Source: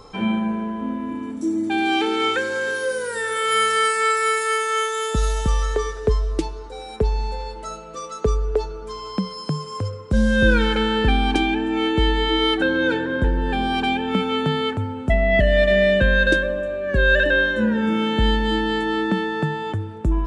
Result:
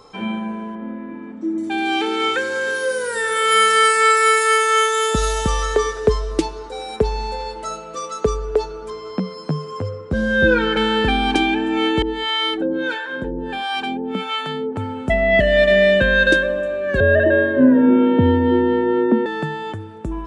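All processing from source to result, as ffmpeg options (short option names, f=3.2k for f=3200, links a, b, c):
-filter_complex "[0:a]asettb=1/sr,asplit=3[a][b][c];[a]atrim=end=0.754[d];[b]atrim=start=0.75:end=1.58,asetpts=PTS-STARTPTS,afade=t=in:d=0.004:c=qsin,afade=t=out:st=0.826:d=0.004:c=qsin,lowpass=2.2k,aecho=1:1:5.5:0.5,atrim=end_sample=36603[e];[c]atrim=start=1.576[f];[d][e]acrossfade=d=0.004:c1=hsin:c2=qsin[g];[g][f]acrossfade=d=0.004:c1=qsin:c2=hsin,asettb=1/sr,asplit=3[h][i][j];[h]atrim=end=8.904[k];[i]atrim=start=8.9:end=10.77,asetpts=PTS-STARTPTS,afade=t=in:d=0.004:c=qsin,afade=t=out:st=1.866:d=0.004:c=qsin,lowpass=f=1.7k:p=1,asplit=2[l][m];[m]adelay=12,volume=-4dB[n];[l][n]amix=inputs=2:normalize=0,atrim=end_sample=82467[o];[j]atrim=start=10.766[p];[k][o]acrossfade=d=0.004:c1=hsin:c2=qsin[q];[q][p]acrossfade=d=0.004:c1=qsin:c2=hsin,asettb=1/sr,asplit=3[r][s][t];[r]atrim=end=12.024[u];[s]atrim=start=12.02:end=14.76,asetpts=PTS-STARTPTS,afade=t=in:d=0.004:c=qsin,afade=t=out:st=2.736:d=0.004:c=qsin,acrossover=split=660[v][w];[v]aeval=exprs='val(0)*(1-1/2+1/2*cos(2*PI*1.5*n/s))':c=same[x];[w]aeval=exprs='val(0)*(1-1/2-1/2*cos(2*PI*1.5*n/s))':c=same[y];[x][y]amix=inputs=2:normalize=0,equalizer=f=68:t=o:w=1:g=-13.5[z];[t]atrim=start=14.756[aa];[u][z]acrossfade=d=0.004:c1=hsin:c2=qsin[ab];[ab][aa]acrossfade=d=0.004:c1=qsin:c2=hsin,asettb=1/sr,asplit=3[ac][ad][ae];[ac]atrim=end=17.004[af];[ad]atrim=start=17:end=19.26,asetpts=PTS-STARTPTS,afade=t=in:d=0.004:c=qsin,afade=t=out:st=2.256:d=0.004:c=qsin,tiltshelf=f=830:g=8.5,afreqshift=38,highpass=110,lowpass=2.3k[ag];[ae]atrim=start=19.256[ah];[af][ag]acrossfade=d=0.004:c1=hsin:c2=qsin[ai];[ai][ah]acrossfade=d=0.004:c1=qsin:c2=hsin,lowshelf=f=120:g=-11,dynaudnorm=f=880:g=7:m=11.5dB,volume=-1dB"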